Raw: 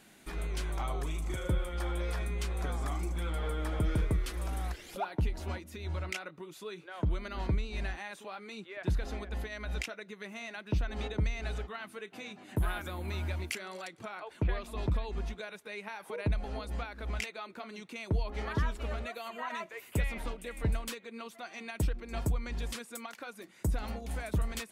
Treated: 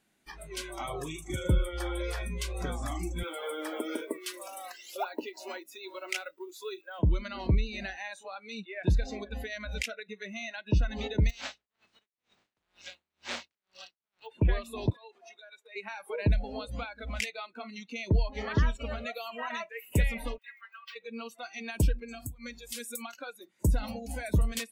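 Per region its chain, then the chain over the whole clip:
0:03.23–0:06.99: high-pass filter 290 Hz 24 dB per octave + log-companded quantiser 6 bits
0:11.29–0:14.25: compressing power law on the bin magnitudes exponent 0.22 + high-frequency loss of the air 130 metres + tremolo with a sine in dB 2.1 Hz, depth 38 dB
0:14.90–0:15.76: high-pass filter 360 Hz 24 dB per octave + downward compressor 12 to 1, threshold −46 dBFS
0:20.38–0:20.96: running median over 5 samples + high-pass filter 1,100 Hz 24 dB per octave + high-shelf EQ 2,900 Hz −11.5 dB
0:22.11–0:23.02: high-shelf EQ 8,100 Hz +11 dB + downward compressor 12 to 1, threshold −37 dBFS
whole clip: noise reduction from a noise print of the clip's start 20 dB; dynamic equaliser 1,000 Hz, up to −5 dB, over −53 dBFS, Q 1.1; level +5.5 dB

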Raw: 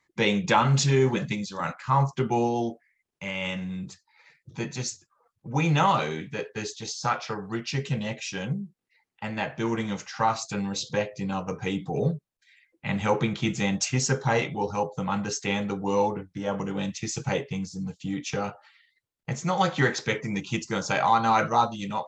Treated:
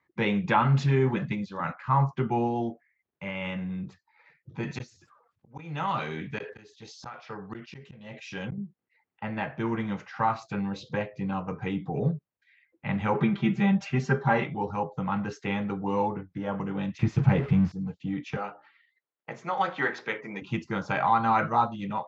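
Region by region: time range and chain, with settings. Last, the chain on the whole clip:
0:04.63–0:08.58: volume swells 687 ms + high-shelf EQ 3,200 Hz +11.5 dB + level that may fall only so fast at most 81 dB per second
0:13.14–0:14.44: low-pass filter 3,900 Hz 6 dB per octave + comb filter 5.1 ms, depth 94%
0:16.99–0:17.72: converter with a step at zero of −31.5 dBFS + bass and treble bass +10 dB, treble −7 dB
0:18.37–0:20.42: high-pass filter 350 Hz + mains-hum notches 60/120/180/240/300/360/420/480/540 Hz
whole clip: high-pass filter 59 Hz; dynamic equaliser 500 Hz, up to −5 dB, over −37 dBFS, Q 1.4; low-pass filter 2,100 Hz 12 dB per octave

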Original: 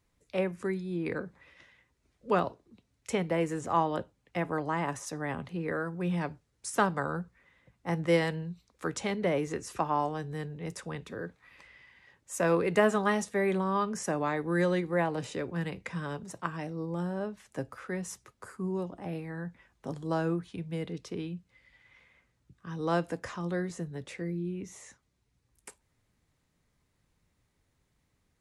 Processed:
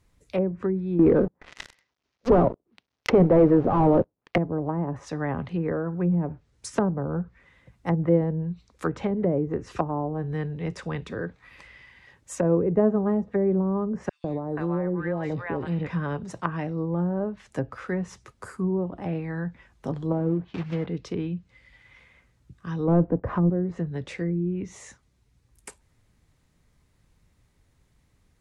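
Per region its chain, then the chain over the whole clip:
0:00.99–0:04.38: variable-slope delta modulation 32 kbit/s + high-pass filter 460 Hz 6 dB per octave + leveller curve on the samples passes 5
0:14.09–0:15.87: downward compressor 3 to 1, threshold −30 dBFS + three-band delay without the direct sound highs, lows, mids 150/480 ms, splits 770/3,600 Hz
0:20.12–0:20.87: one scale factor per block 3 bits + high-pass filter 110 Hz 6 dB per octave + high-frequency loss of the air 78 metres
0:22.88–0:23.50: low-pass filter 2,900 Hz 6 dB per octave + leveller curve on the samples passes 2
whole clip: treble cut that deepens with the level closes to 500 Hz, closed at −27 dBFS; low-shelf EQ 110 Hz +7.5 dB; level +6 dB

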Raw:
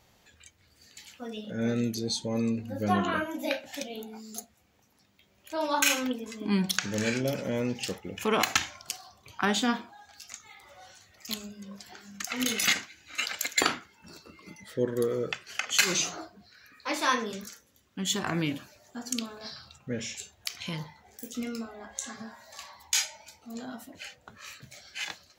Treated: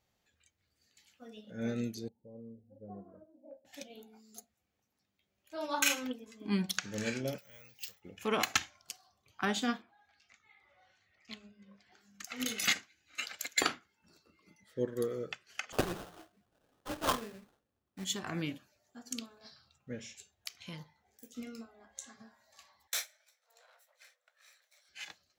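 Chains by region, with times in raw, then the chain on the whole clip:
0:02.08–0:03.65: transistor ladder low-pass 620 Hz, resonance 40% + parametric band 320 Hz −6 dB 1.1 octaves
0:07.38–0:08.02: guitar amp tone stack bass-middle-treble 10-0-10 + bad sample-rate conversion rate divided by 2×, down filtered, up zero stuff
0:09.82–0:11.92: low-pass filter 3,500 Hz + parametric band 2,100 Hz +6 dB 0.59 octaves + one half of a high-frequency compander encoder only
0:15.72–0:18.05: low-pass filter 2,800 Hz + sample-rate reduction 2,200 Hz, jitter 20%
0:22.87–0:24.89: lower of the sound and its delayed copy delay 0.53 ms + Butterworth high-pass 500 Hz 96 dB per octave
whole clip: notch filter 960 Hz, Q 15; expander for the loud parts 1.5 to 1, over −46 dBFS; level −4 dB

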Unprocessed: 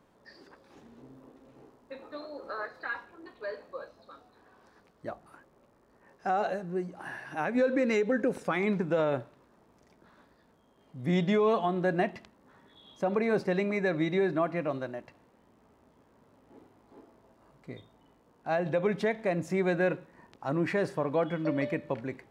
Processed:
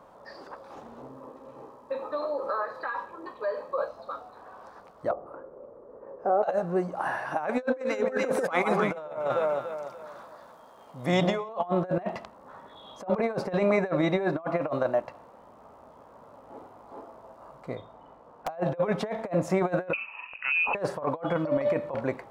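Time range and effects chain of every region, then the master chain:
0:01.08–0:03.78: notch comb filter 710 Hz + downward compressor, threshold −39 dBFS
0:05.11–0:06.43: drawn EQ curve 190 Hz 0 dB, 490 Hz +12 dB, 740 Hz −5 dB, 1,200 Hz −5 dB, 3,800 Hz −22 dB + downward compressor 1.5 to 1, threshold −47 dBFS + hum removal 59.98 Hz, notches 38
0:07.48–0:11.49: spectral tilt +2 dB per octave + delay that swaps between a low-pass and a high-pass 145 ms, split 1,200 Hz, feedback 59%, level −3 dB
0:17.75–0:18.48: low-pass filter 3,400 Hz 6 dB per octave + wrap-around overflow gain 32.5 dB
0:19.93–0:20.75: low shelf with overshoot 480 Hz +10.5 dB, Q 1.5 + downward compressor 3 to 1, threshold −32 dBFS + voice inversion scrambler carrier 2,800 Hz
whole clip: flat-topped bell 820 Hz +11 dB; compressor whose output falls as the input rises −26 dBFS, ratio −0.5

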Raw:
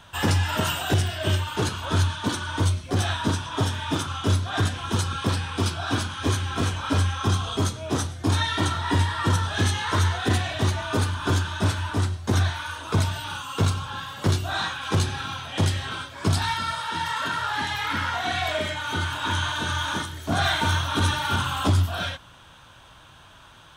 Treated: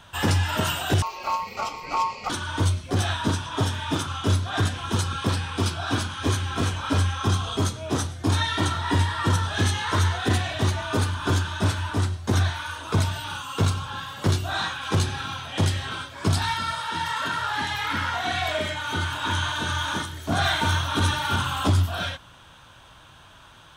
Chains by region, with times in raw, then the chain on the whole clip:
0:01.02–0:02.30: phaser with its sweep stopped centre 2,700 Hz, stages 6 + ring modulation 1,000 Hz
whole clip: no processing

